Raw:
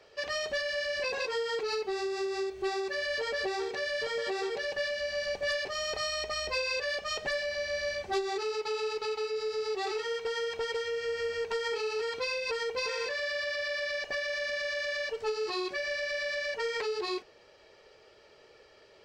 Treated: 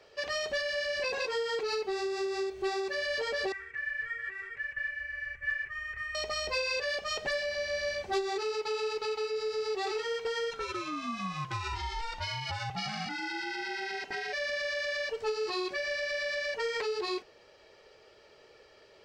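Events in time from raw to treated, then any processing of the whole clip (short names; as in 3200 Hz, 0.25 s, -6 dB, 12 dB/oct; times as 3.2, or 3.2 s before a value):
3.52–6.15 EQ curve 110 Hz 0 dB, 170 Hz -19 dB, 250 Hz -21 dB, 780 Hz -30 dB, 1200 Hz -9 dB, 1900 Hz +5 dB, 4200 Hz -30 dB, 8200 Hz -19 dB
10.5–14.32 ring modulator 930 Hz -> 160 Hz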